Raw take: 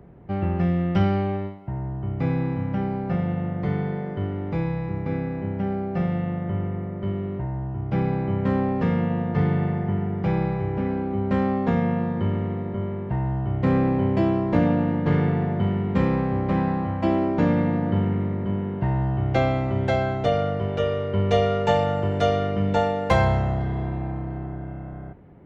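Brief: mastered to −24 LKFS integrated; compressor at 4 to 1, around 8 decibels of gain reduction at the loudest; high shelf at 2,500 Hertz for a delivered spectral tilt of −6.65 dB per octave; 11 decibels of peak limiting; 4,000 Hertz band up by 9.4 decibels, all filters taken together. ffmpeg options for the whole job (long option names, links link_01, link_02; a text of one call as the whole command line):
ffmpeg -i in.wav -af "highshelf=frequency=2500:gain=6,equalizer=frequency=4000:width_type=o:gain=8,acompressor=threshold=-24dB:ratio=4,volume=8dB,alimiter=limit=-15.5dB:level=0:latency=1" out.wav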